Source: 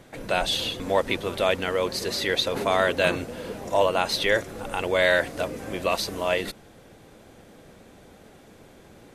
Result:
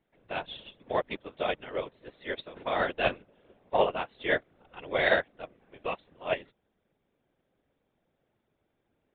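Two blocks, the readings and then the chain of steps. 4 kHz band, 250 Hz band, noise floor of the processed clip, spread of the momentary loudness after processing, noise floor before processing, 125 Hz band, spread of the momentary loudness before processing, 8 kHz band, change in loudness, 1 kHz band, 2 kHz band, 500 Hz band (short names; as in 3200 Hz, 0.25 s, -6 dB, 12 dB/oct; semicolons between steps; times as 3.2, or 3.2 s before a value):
-12.5 dB, -9.0 dB, -78 dBFS, 16 LU, -51 dBFS, -10.5 dB, 9 LU, under -40 dB, -6.5 dB, -5.5 dB, -6.0 dB, -7.0 dB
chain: downsampling 8000 Hz; whisperiser; upward expander 2.5:1, over -34 dBFS; gain -1.5 dB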